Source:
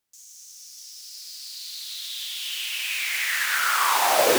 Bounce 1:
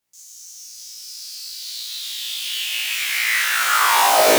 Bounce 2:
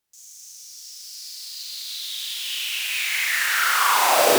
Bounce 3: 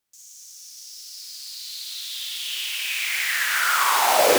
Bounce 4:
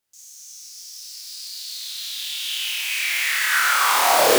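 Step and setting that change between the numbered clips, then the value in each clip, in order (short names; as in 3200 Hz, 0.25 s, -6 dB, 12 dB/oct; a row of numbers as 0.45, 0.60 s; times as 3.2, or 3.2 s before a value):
flutter echo, walls apart: 3, 6.7, 9.9, 4.6 m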